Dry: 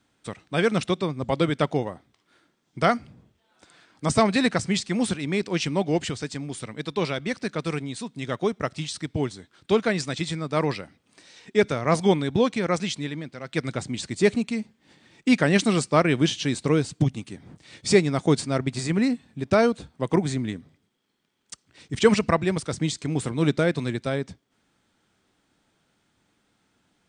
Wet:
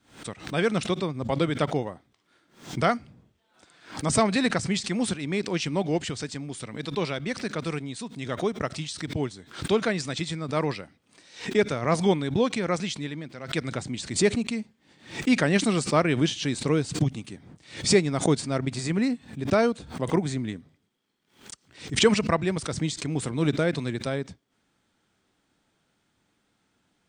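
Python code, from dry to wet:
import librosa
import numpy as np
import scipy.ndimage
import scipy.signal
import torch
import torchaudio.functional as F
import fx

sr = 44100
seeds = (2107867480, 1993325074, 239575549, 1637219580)

y = fx.pre_swell(x, sr, db_per_s=130.0)
y = y * 10.0 ** (-2.5 / 20.0)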